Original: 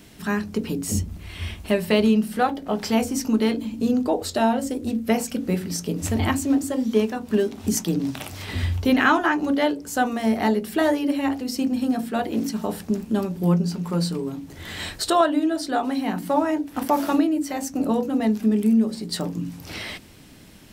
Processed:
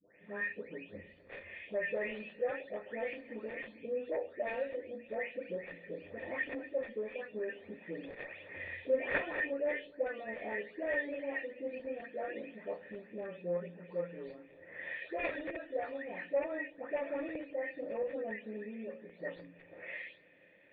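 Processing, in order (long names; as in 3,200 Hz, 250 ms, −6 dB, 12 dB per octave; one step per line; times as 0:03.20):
every frequency bin delayed by itself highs late, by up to 462 ms
spectral tilt +4 dB per octave
harmonic generator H 2 −13 dB, 7 −9 dB, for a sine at −3.5 dBFS
formant resonators in series e
delay with a low-pass on its return 150 ms, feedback 64%, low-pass 490 Hz, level −19 dB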